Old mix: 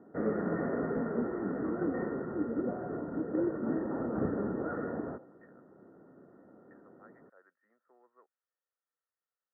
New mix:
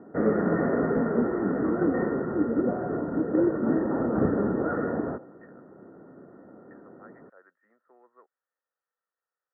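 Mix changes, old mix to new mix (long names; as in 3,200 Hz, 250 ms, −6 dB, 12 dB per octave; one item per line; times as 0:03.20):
speech +6.5 dB
background +8.0 dB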